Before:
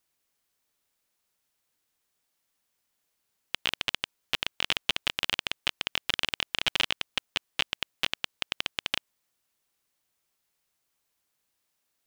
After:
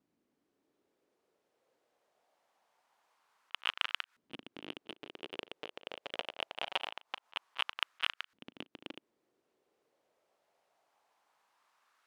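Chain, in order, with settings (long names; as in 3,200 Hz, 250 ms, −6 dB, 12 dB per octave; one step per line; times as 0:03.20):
high-shelf EQ 2,600 Hz +4.5 dB
echo ahead of the sound 37 ms −16 dB
soft clipping −17.5 dBFS, distortion −7 dB
volume swells 100 ms
auto-filter band-pass saw up 0.24 Hz 240–1,500 Hz
level +17.5 dB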